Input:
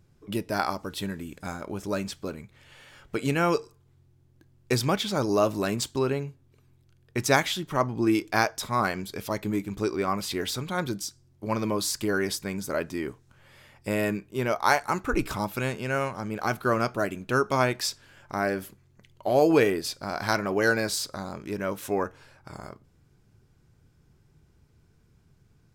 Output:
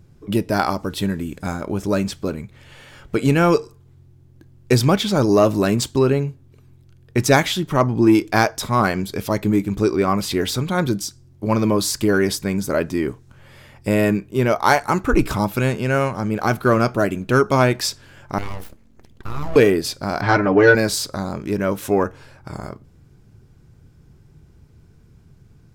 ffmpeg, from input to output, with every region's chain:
-filter_complex "[0:a]asettb=1/sr,asplit=3[a][b][c];[a]atrim=end=18.384[d];[b]atrim=start=18.38:end=19.56,asetpts=PTS-STARTPTS,afade=t=in:d=0.004:c=qsin,afade=t=out:st=1.176:d=0.004:c=qsin,aeval=exprs='abs(val(0))':c=same,acompressor=threshold=-33dB:ratio=3:attack=3.2:release=140:knee=1:detection=peak,tremolo=f=63:d=0.4[e];[c]atrim=start=19.556[f];[d][e]acrossfade=d=0.004:c1=hsin:c2=qsin[g];[g][f]acrossfade=d=0.004:c1=qsin:c2=hsin,asettb=1/sr,asplit=3[h][i][j];[h]atrim=end=20.214[k];[i]atrim=start=20.21:end=20.75,asetpts=PTS-STARTPTS,afade=t=in:d=0.004:c=qsin,afade=t=out:st=0.536:d=0.004:c=qsin,lowpass=3.1k,aecho=1:1:6.7:0.91,atrim=end_sample=23814[l];[j]atrim=start=20.746[m];[k][l]acrossfade=d=0.004:c1=hsin:c2=qsin[n];[n][m]acrossfade=d=0.004:c1=qsin:c2=hsin,lowshelf=f=490:g=6,acontrast=53"

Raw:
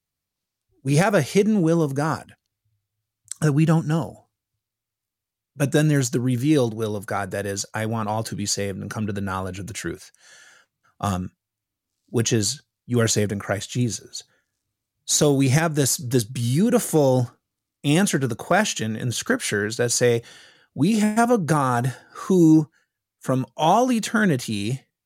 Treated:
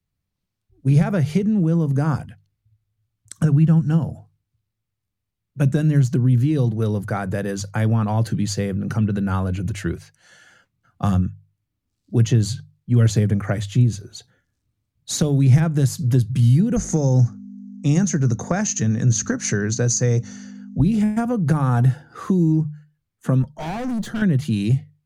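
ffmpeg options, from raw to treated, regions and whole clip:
-filter_complex "[0:a]asettb=1/sr,asplit=3[a][b][c];[a]atrim=end=16.764[d];[b]atrim=start=16.76:end=20.79,asetpts=PTS-STARTPTS,afade=t=in:d=0.004:c=qsin,afade=t=out:st=4.026:d=0.004:c=qsin,lowpass=f=6.3k:t=q:w=9.4,equalizer=f=3.2k:w=3.5:g=-11.5,aeval=exprs='val(0)+0.0251*(sin(2*PI*50*n/s)+sin(2*PI*2*50*n/s)/2+sin(2*PI*3*50*n/s)/3+sin(2*PI*4*50*n/s)/4+sin(2*PI*5*50*n/s)/5)':c=same[e];[c]atrim=start=20.786[f];[d][e]acrossfade=d=0.004:c1=hsin:c2=qsin[g];[g][f]acrossfade=d=0.004:c1=qsin:c2=hsin,asettb=1/sr,asplit=3[h][i][j];[h]atrim=end=23.424[k];[i]atrim=start=23.42:end=24.22,asetpts=PTS-STARTPTS,afade=t=in:d=0.004:c=qsin,afade=t=out:st=0.796:d=0.004:c=qsin,asuperstop=centerf=2400:order=4:qfactor=1.9,aeval=exprs='(tanh(25.1*val(0)+0.2)-tanh(0.2))/25.1':c=same[l];[j]atrim=start=24.216[m];[k][l]acrossfade=d=0.004:c1=hsin:c2=qsin[n];[n][m]acrossfade=d=0.004:c1=qsin:c2=hsin,bass=f=250:g=12,treble=f=4k:g=-6,bandreject=f=50:t=h:w=6,bandreject=f=100:t=h:w=6,bandreject=f=150:t=h:w=6,acrossover=split=130[o][p];[p]acompressor=threshold=-19dB:ratio=6[q];[o][q]amix=inputs=2:normalize=0"

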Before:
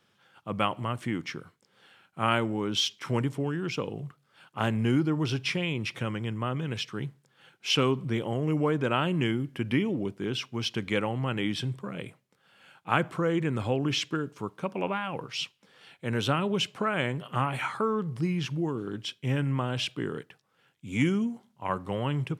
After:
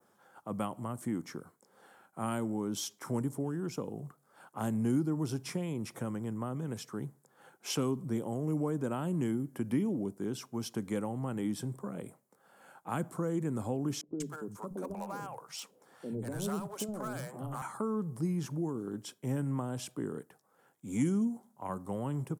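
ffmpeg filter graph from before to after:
-filter_complex "[0:a]asettb=1/sr,asplit=3[a][b][c];[a]atrim=end=14.014[d];[b]atrim=start=14.01:end=17.62,asetpts=PTS-STARTPTS,afade=t=in:d=0.004:c=qsin,afade=t=out:st=3.606:d=0.004:c=qsin,asoftclip=type=hard:threshold=-23dB,acrossover=split=180|550[e][f][g];[e]adelay=70[h];[g]adelay=190[i];[h][f][i]amix=inputs=3:normalize=0,atrim=end_sample=159201[j];[c]atrim=start=17.616[k];[d][j]acrossfade=d=0.004:c1=hsin:c2=qsin[l];[l][k]acrossfade=d=0.004:c1=qsin:c2=hsin,firequalizer=gain_entry='entry(120,0);entry(220,9);entry(770,14);entry(2700,-7);entry(7300,11);entry(11000,15)':delay=0.05:min_phase=1,acrossover=split=240|3000[m][n][o];[n]acompressor=threshold=-40dB:ratio=2[p];[m][p][o]amix=inputs=3:normalize=0,adynamicequalizer=threshold=0.00316:dfrequency=3500:dqfactor=0.77:tfrequency=3500:tqfactor=0.77:attack=5:release=100:ratio=0.375:range=2:mode=cutabove:tftype=bell,volume=-7.5dB"

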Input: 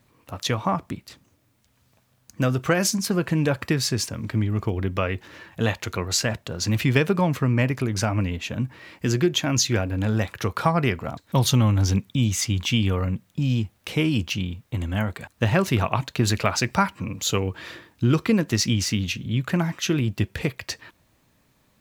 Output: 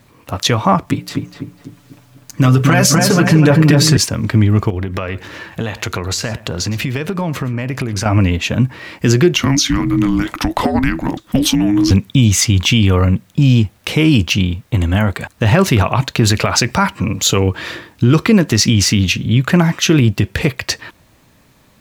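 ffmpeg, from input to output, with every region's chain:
-filter_complex "[0:a]asettb=1/sr,asplit=3[a][b][c];[a]atrim=end=0.864[d];[b]atrim=start=0.86:end=3.97,asetpts=PTS-STARTPTS,afade=t=in:d=0.004:c=qsin,afade=t=out:st=3.106:d=0.004:c=qsin,bandreject=f=60:t=h:w=6,bandreject=f=120:t=h:w=6,bandreject=f=180:t=h:w=6,bandreject=f=240:t=h:w=6,bandreject=f=300:t=h:w=6,bandreject=f=360:t=h:w=6,bandreject=f=420:t=h:w=6,bandreject=f=480:t=h:w=6,bandreject=f=540:t=h:w=6,bandreject=f=600:t=h:w=6,aecho=1:1:6.9:0.92,atrim=end_sample=137151,asplit=2[e][f];[f]adelay=248,lowpass=f=1.5k:p=1,volume=-3dB,asplit=2[g][h];[h]adelay=248,lowpass=f=1.5k:p=1,volume=0.46,asplit=2[i][j];[j]adelay=248,lowpass=f=1.5k:p=1,volume=0.46,asplit=2[k][l];[l]adelay=248,lowpass=f=1.5k:p=1,volume=0.46,asplit=2[m][n];[n]adelay=248,lowpass=f=1.5k:p=1,volume=0.46,asplit=2[o][p];[p]adelay=248,lowpass=f=1.5k:p=1,volume=0.46[q];[e][g][i][k][m][o][q]amix=inputs=7:normalize=0,atrim=end_sample=137151[r];[c]atrim=start=3.966[s];[d][r]acrossfade=d=0.004:c1=hsin:c2=qsin[t];[t][s]acrossfade=d=0.004:c1=qsin:c2=hsin,asettb=1/sr,asplit=3[u][v][w];[u]atrim=end=4.704[x];[v]atrim=start=4.7:end=8.06,asetpts=PTS-STARTPTS,afade=t=in:d=0.004:c=qsin,afade=t=out:st=3.356:d=0.004:c=qsin,acompressor=threshold=-28dB:ratio=10:attack=3.2:release=140:knee=1:detection=peak,aecho=1:1:113:0.119,atrim=end_sample=148176[y];[w]atrim=start=8.056[z];[x][y]acrossfade=d=0.004:c1=hsin:c2=qsin[aa];[aa][z]acrossfade=d=0.004:c1=qsin:c2=hsin,asettb=1/sr,asplit=3[ab][ac][ad];[ab]atrim=end=9.364[ae];[ac]atrim=start=9.36:end=11.91,asetpts=PTS-STARTPTS,afade=t=in:d=0.004:c=qsin,afade=t=out:st=2.546:d=0.004:c=qsin,acompressor=threshold=-22dB:ratio=6:attack=3.2:release=140:knee=1:detection=peak,afreqshift=-410[af];[ad]atrim=start=11.906[ag];[ae][af]acrossfade=d=0.004:c1=hsin:c2=qsin[ah];[ah][ag]acrossfade=d=0.004:c1=qsin:c2=hsin,highshelf=f=11k:g=-3,alimiter=level_in=13.5dB:limit=-1dB:release=50:level=0:latency=1,volume=-1dB"

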